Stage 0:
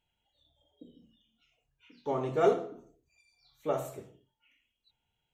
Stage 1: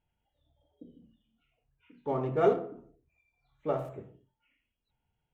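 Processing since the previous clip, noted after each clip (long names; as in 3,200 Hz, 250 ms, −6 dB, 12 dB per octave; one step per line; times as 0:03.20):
adaptive Wiener filter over 9 samples
bass and treble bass +4 dB, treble −11 dB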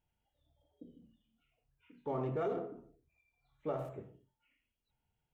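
brickwall limiter −24.5 dBFS, peak gain reduction 11.5 dB
level −3 dB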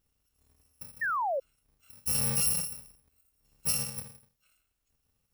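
samples in bit-reversed order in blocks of 128 samples
sound drawn into the spectrogram fall, 0:01.01–0:01.40, 510–1,900 Hz −37 dBFS
level +7.5 dB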